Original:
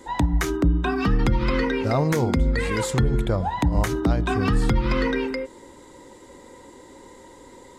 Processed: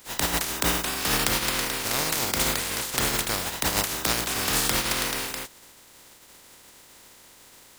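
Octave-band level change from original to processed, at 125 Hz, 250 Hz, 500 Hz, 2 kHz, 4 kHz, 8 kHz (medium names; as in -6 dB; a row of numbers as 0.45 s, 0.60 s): -13.5 dB, -10.5 dB, -8.0 dB, +1.5 dB, +10.0 dB, +13.0 dB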